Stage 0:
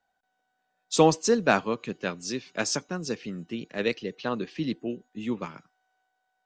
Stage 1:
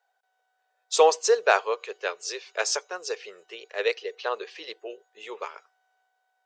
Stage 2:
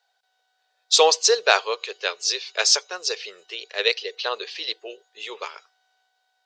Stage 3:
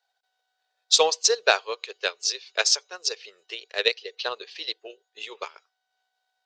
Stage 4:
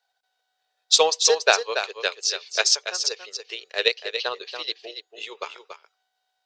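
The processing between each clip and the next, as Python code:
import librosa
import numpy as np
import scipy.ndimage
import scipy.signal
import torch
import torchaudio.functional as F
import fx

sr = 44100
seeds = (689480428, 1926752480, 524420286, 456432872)

y1 = scipy.signal.sosfilt(scipy.signal.ellip(4, 1.0, 40, 420.0, 'highpass', fs=sr, output='sos'), x)
y1 = y1 * librosa.db_to_amplitude(3.0)
y2 = fx.peak_eq(y1, sr, hz=4200.0, db=14.5, octaves=1.4)
y3 = fx.transient(y2, sr, attack_db=7, sustain_db=-5)
y3 = y3 * librosa.db_to_amplitude(-6.5)
y4 = y3 + 10.0 ** (-8.5 / 20.0) * np.pad(y3, (int(283 * sr / 1000.0), 0))[:len(y3)]
y4 = y4 * librosa.db_to_amplitude(1.5)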